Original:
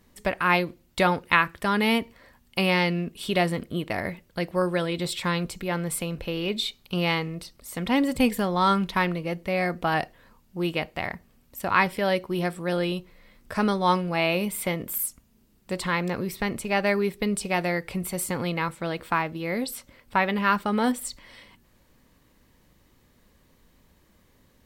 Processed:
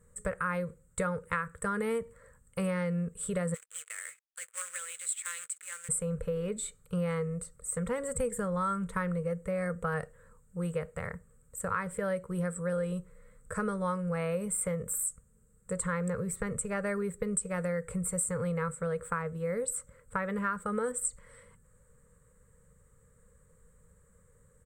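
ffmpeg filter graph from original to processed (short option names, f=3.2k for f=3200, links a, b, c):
-filter_complex "[0:a]asettb=1/sr,asplit=3[a][b][c];[a]atrim=end=3.544[d];[b]atrim=start=3.54:end=5.89,asetpts=PTS-STARTPTS,afade=t=in:d=0.004:c=qsin,afade=t=out:st=2.346:d=0.004:c=qsin,aeval=exprs='sgn(val(0))*max(abs(val(0))-0.00596,0)':c=same,acrusher=bits=2:mode=log:mix=0:aa=0.000001,highpass=f=2.6k:t=q:w=2.1[e];[c]atrim=start=5.886[f];[d][e]acrossfade=d=0.004:c1=hsin:c2=qsin[g];[g][f]acrossfade=d=0.004:c1=qsin:c2=hsin,firequalizer=gain_entry='entry(170,0);entry(310,-26);entry(470,6);entry(710,-18);entry(1300,0);entry(2700,-21);entry(5300,-22);entry(8000,11);entry(11000,-12)':delay=0.05:min_phase=1,acompressor=threshold=-28dB:ratio=6"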